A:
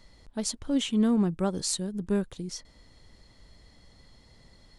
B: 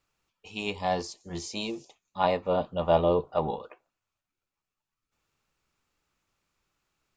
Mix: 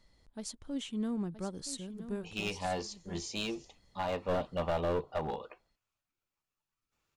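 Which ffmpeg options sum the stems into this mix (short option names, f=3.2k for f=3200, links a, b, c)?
-filter_complex "[0:a]volume=-11dB,asplit=2[a][b];[b]volume=-11.5dB[c];[1:a]adynamicequalizer=threshold=0.00447:dfrequency=2800:dqfactor=1.9:tfrequency=2800:tqfactor=1.9:attack=5:release=100:ratio=0.375:range=2:mode=boostabove:tftype=bell,alimiter=limit=-17dB:level=0:latency=1:release=186,aeval=exprs='clip(val(0),-1,0.0376)':c=same,adelay=1800,volume=-3dB[d];[c]aecho=0:1:972:1[e];[a][d][e]amix=inputs=3:normalize=0"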